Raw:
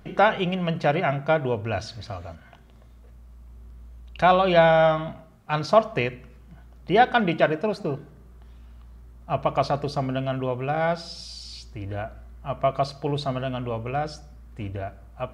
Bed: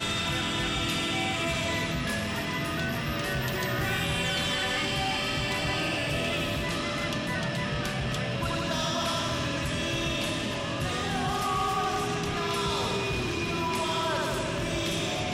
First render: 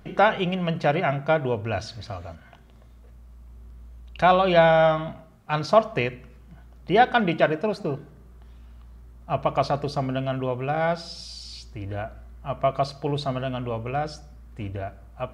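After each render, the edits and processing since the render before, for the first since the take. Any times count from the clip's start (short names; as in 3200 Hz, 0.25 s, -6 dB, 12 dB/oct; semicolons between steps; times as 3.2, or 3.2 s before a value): nothing audible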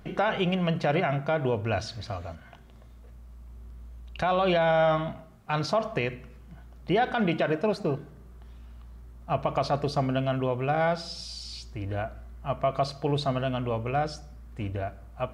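limiter -16 dBFS, peak gain reduction 11 dB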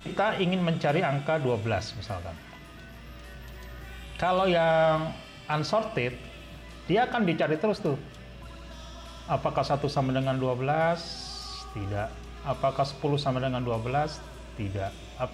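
add bed -17.5 dB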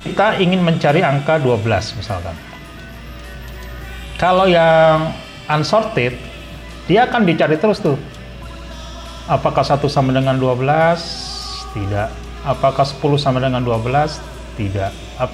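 gain +12 dB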